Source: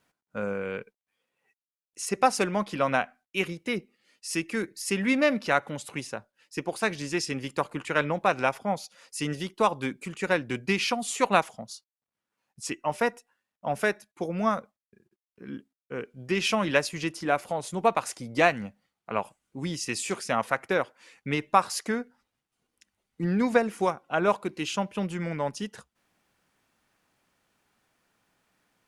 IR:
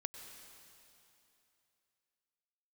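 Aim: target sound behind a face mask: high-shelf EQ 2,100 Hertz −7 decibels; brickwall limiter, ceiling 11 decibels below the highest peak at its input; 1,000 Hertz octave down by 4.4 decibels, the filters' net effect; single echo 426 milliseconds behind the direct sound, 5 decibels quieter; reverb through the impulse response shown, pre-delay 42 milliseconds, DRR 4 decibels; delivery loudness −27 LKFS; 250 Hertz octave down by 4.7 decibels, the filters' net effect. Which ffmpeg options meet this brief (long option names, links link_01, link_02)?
-filter_complex "[0:a]equalizer=frequency=250:width_type=o:gain=-6,equalizer=frequency=1000:width_type=o:gain=-4,alimiter=limit=-18dB:level=0:latency=1,aecho=1:1:426:0.562,asplit=2[link_01][link_02];[1:a]atrim=start_sample=2205,adelay=42[link_03];[link_02][link_03]afir=irnorm=-1:irlink=0,volume=-2dB[link_04];[link_01][link_04]amix=inputs=2:normalize=0,highshelf=frequency=2100:gain=-7,volume=5.5dB"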